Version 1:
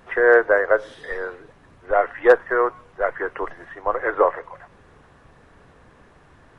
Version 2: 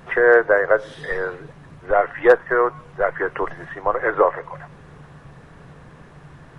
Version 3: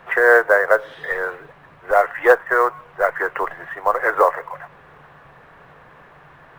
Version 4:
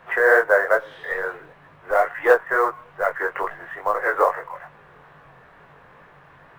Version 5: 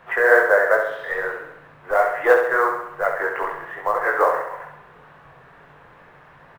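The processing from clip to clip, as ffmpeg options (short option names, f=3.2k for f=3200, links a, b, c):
-filter_complex "[0:a]equalizer=f=150:w=3.7:g=13.5,asplit=2[a][b];[b]acompressor=threshold=-25dB:ratio=6,volume=-0.5dB[c];[a][c]amix=inputs=2:normalize=0,volume=-1dB"
-filter_complex "[0:a]acrossover=split=500 3300:gain=0.2 1 0.141[a][b][c];[a][b][c]amix=inputs=3:normalize=0,acrusher=bits=8:mode=log:mix=0:aa=0.000001,volume=4dB"
-af "flanger=delay=19:depth=4.3:speed=2.3"
-af "aecho=1:1:67|134|201|268|335|402|469:0.501|0.281|0.157|0.088|0.0493|0.0276|0.0155"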